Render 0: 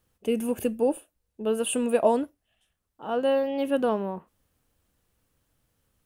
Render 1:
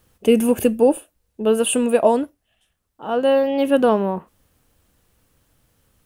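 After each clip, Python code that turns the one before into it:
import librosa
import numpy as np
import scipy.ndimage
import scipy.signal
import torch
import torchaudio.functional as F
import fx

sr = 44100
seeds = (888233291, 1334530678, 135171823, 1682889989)

y = fx.rider(x, sr, range_db=10, speed_s=0.5)
y = y * librosa.db_to_amplitude(9.0)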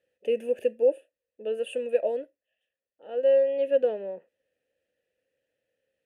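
y = fx.vowel_filter(x, sr, vowel='e')
y = fx.peak_eq(y, sr, hz=11000.0, db=5.0, octaves=1.5)
y = y * librosa.db_to_amplitude(-2.5)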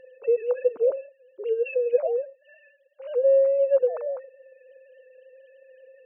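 y = fx.sine_speech(x, sr)
y = fx.env_flatten(y, sr, amount_pct=50)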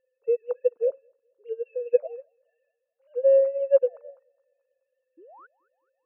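y = fx.spec_paint(x, sr, seeds[0], shape='rise', start_s=5.17, length_s=0.3, low_hz=300.0, high_hz=1600.0, level_db=-30.0)
y = fx.echo_feedback(y, sr, ms=214, feedback_pct=50, wet_db=-15.5)
y = fx.upward_expand(y, sr, threshold_db=-35.0, expansion=2.5)
y = y * librosa.db_to_amplitude(3.0)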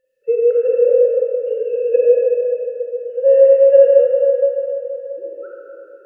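y = fx.brickwall_bandstop(x, sr, low_hz=620.0, high_hz=1300.0)
y = fx.rev_freeverb(y, sr, rt60_s=3.7, hf_ratio=0.5, predelay_ms=5, drr_db=-6.5)
y = y * librosa.db_to_amplitude(6.0)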